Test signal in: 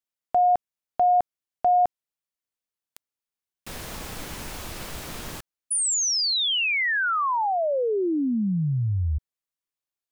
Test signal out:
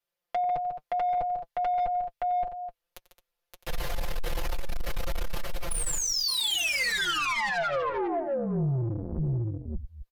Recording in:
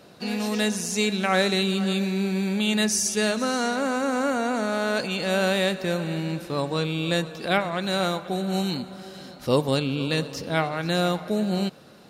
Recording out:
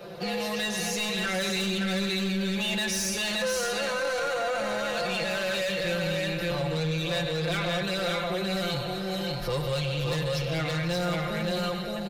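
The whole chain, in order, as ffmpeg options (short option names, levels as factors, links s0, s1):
-filter_complex "[0:a]asubboost=boost=7.5:cutoff=57,flanger=delay=4.9:depth=2.3:regen=45:speed=0.63:shape=triangular,aresample=32000,aresample=44100,equalizer=f=125:t=o:w=1:g=4,equalizer=f=250:t=o:w=1:g=-10,equalizer=f=500:t=o:w=1:g=9,equalizer=f=8000:t=o:w=1:g=-9,acrossover=split=190|1500[s0][s1][s2];[s1]acompressor=threshold=0.00631:ratio=2:attack=41:release=850:knee=2.83:detection=peak[s3];[s0][s3][s2]amix=inputs=3:normalize=0,asplit=2[s4][s5];[s5]aecho=0:1:91|146|217|571|660|828:0.126|0.266|0.158|0.668|0.15|0.106[s6];[s4][s6]amix=inputs=2:normalize=0,asoftclip=type=tanh:threshold=0.0299,aecho=1:1:5.8:0.99,acompressor=threshold=0.0251:ratio=6:attack=0.85:release=31:knee=6:detection=peak,volume=2.37"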